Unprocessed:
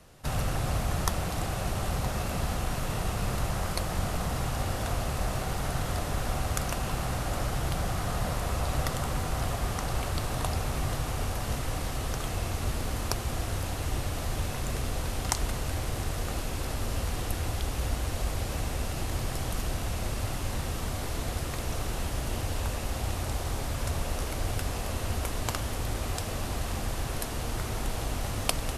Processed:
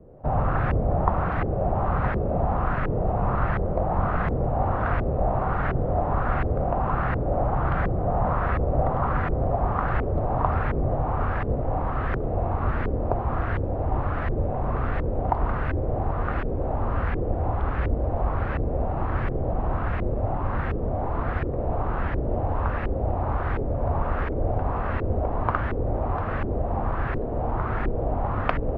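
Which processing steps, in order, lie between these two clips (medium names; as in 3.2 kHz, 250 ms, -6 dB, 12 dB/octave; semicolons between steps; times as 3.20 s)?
low-pass 2.7 kHz 12 dB/octave; LFO low-pass saw up 1.4 Hz 400–1900 Hz; trim +5.5 dB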